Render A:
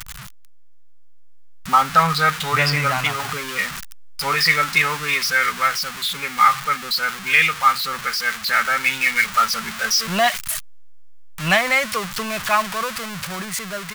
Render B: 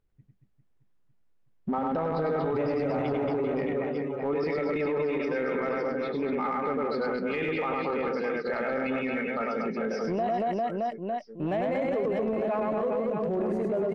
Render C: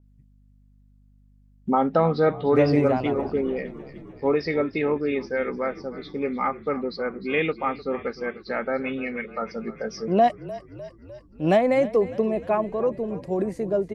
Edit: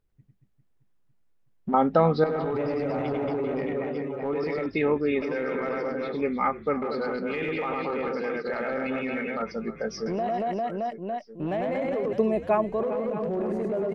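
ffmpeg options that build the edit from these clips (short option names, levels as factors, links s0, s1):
-filter_complex "[2:a]asplit=5[s0][s1][s2][s3][s4];[1:a]asplit=6[s5][s6][s7][s8][s9][s10];[s5]atrim=end=1.742[s11];[s0]atrim=start=1.738:end=2.242[s12];[s6]atrim=start=2.238:end=4.662[s13];[s1]atrim=start=4.658:end=5.222[s14];[s7]atrim=start=5.218:end=6.212[s15];[s2]atrim=start=6.208:end=6.822[s16];[s8]atrim=start=6.818:end=9.422[s17];[s3]atrim=start=9.418:end=10.062[s18];[s9]atrim=start=10.058:end=12.132[s19];[s4]atrim=start=12.128:end=12.832[s20];[s10]atrim=start=12.828[s21];[s11][s12]acrossfade=d=0.004:c1=hsin:c2=hsin[s22];[s22][s13]acrossfade=d=0.004:c1=hsin:c2=hsin[s23];[s23][s14]acrossfade=d=0.004:c1=hsin:c2=hsin[s24];[s24][s15]acrossfade=d=0.004:c1=hsin:c2=hsin[s25];[s25][s16]acrossfade=d=0.004:c1=hsin:c2=hsin[s26];[s26][s17]acrossfade=d=0.004:c1=hsin:c2=hsin[s27];[s27][s18]acrossfade=d=0.004:c1=hsin:c2=hsin[s28];[s28][s19]acrossfade=d=0.004:c1=hsin:c2=hsin[s29];[s29][s20]acrossfade=d=0.004:c1=hsin:c2=hsin[s30];[s30][s21]acrossfade=d=0.004:c1=hsin:c2=hsin"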